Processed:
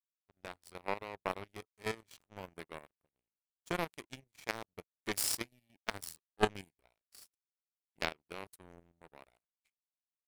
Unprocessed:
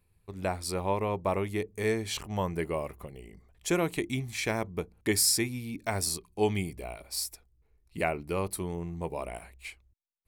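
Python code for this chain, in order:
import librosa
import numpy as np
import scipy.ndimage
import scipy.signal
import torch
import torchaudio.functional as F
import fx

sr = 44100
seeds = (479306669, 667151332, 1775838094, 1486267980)

y = fx.power_curve(x, sr, exponent=3.0)
y = fx.level_steps(y, sr, step_db=11)
y = F.gain(torch.from_numpy(y), 10.5).numpy()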